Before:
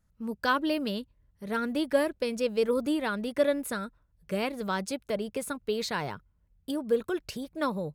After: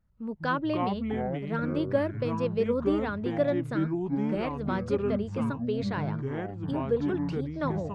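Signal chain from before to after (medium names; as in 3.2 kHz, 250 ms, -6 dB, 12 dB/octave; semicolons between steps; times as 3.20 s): tape spacing loss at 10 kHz 24 dB; ever faster or slower copies 116 ms, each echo -6 st, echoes 3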